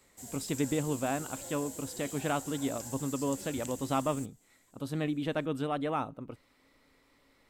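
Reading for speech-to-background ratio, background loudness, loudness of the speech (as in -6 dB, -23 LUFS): 8.0 dB, -42.5 LUFS, -34.5 LUFS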